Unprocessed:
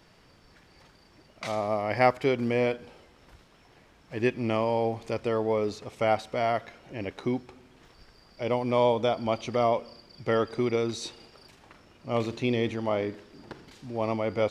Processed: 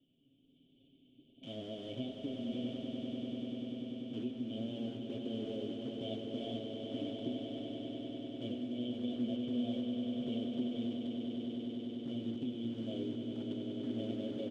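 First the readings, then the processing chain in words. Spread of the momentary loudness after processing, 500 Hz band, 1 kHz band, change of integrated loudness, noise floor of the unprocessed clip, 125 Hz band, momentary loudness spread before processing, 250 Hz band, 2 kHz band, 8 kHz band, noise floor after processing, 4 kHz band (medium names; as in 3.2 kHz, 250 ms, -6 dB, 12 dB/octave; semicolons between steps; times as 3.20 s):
5 LU, -16.5 dB, -26.5 dB, -11.5 dB, -58 dBFS, -11.5 dB, 15 LU, -3.5 dB, -24.0 dB, no reading, -68 dBFS, -5.5 dB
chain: dead-time distortion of 0.14 ms; cascade formant filter i; tilt EQ +3 dB/octave; hum notches 50/100 Hz; comb 7.5 ms, depth 56%; level rider gain up to 5 dB; elliptic band-stop 670–3100 Hz, stop band 40 dB; in parallel at -11.5 dB: bit crusher 8-bit; on the sum: compression, threshold -40 dBFS, peak gain reduction 15 dB; flange 1.3 Hz, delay 8.3 ms, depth 9.3 ms, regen +75%; distance through air 92 m; echo with a slow build-up 98 ms, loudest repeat 8, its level -9 dB; trim +6 dB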